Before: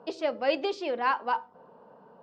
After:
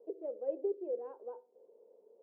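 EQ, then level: Butterworth band-pass 430 Hz, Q 2.6; -3.0 dB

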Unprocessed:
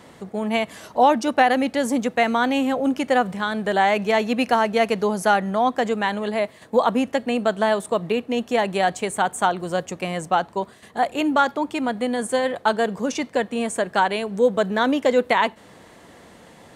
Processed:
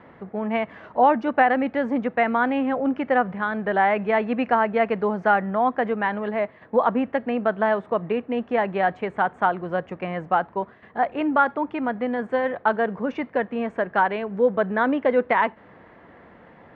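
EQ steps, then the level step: ladder low-pass 2400 Hz, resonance 25%; +4.0 dB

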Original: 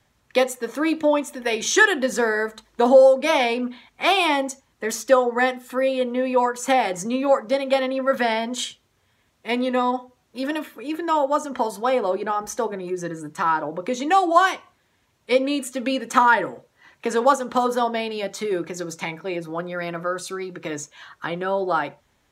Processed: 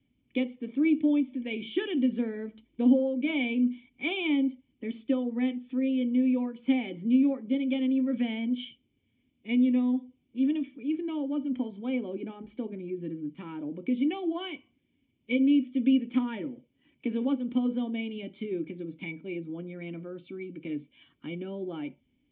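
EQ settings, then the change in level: vocal tract filter i; +4.0 dB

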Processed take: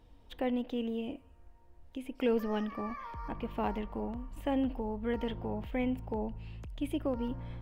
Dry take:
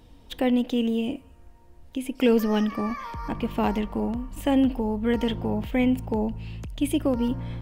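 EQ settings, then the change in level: bell 190 Hz -6 dB 2.2 oct; high shelf 2700 Hz -9 dB; dynamic EQ 7800 Hz, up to -6 dB, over -57 dBFS, Q 0.79; -5.5 dB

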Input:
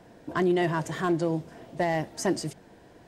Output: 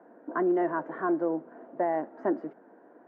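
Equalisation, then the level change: Chebyshev band-pass 250–1500 Hz, order 3; 0.0 dB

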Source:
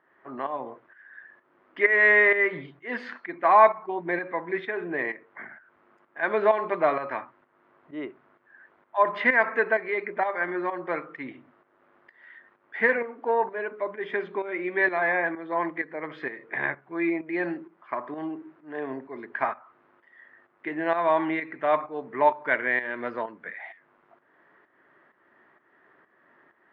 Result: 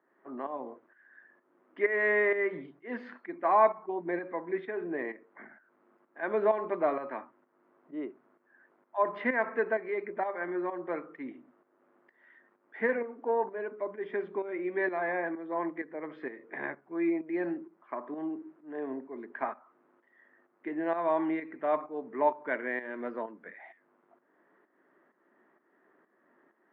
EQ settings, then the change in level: HPF 210 Hz 24 dB/oct; tilt -3.5 dB/oct; -7.5 dB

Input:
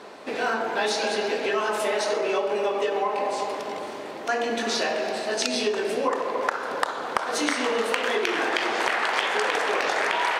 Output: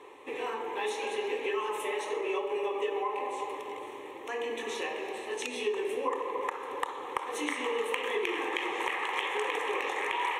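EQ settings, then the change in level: fixed phaser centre 980 Hz, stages 8; -5.0 dB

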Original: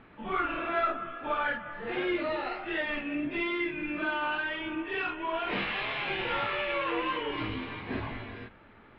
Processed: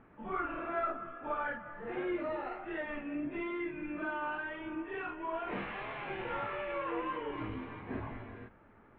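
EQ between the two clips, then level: LPF 1600 Hz 12 dB/oct; -4.5 dB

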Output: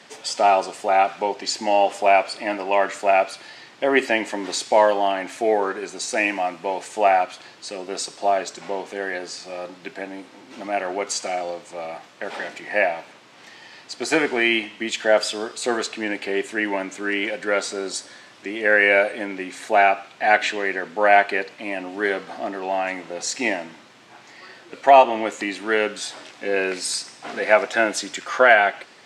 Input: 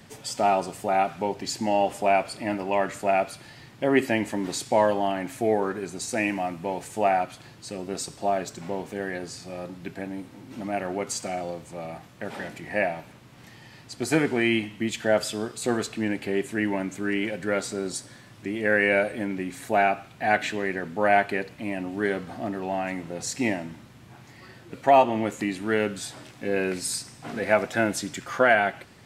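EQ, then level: HPF 410 Hz 12 dB/oct; air absorption 100 m; high shelf 4100 Hz +9 dB; +6.0 dB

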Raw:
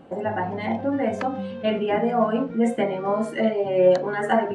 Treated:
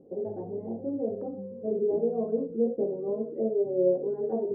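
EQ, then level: ladder low-pass 490 Hz, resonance 65%; 0.0 dB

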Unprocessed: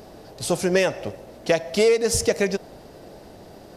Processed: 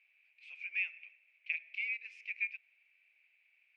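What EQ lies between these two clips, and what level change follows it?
Butterworth band-pass 2400 Hz, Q 6.8; 0.0 dB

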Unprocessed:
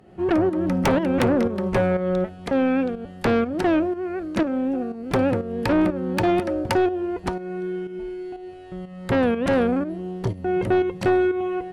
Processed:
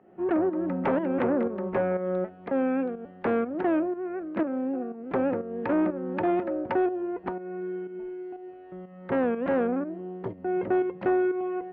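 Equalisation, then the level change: air absorption 300 m; three-band isolator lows -18 dB, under 190 Hz, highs -18 dB, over 2600 Hz; -3.5 dB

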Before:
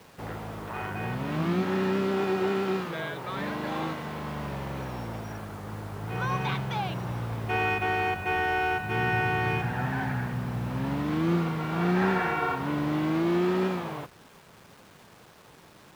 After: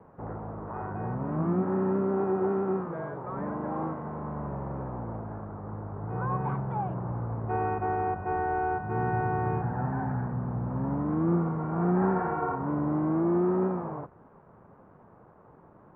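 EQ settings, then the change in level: LPF 1200 Hz 24 dB/oct; 0.0 dB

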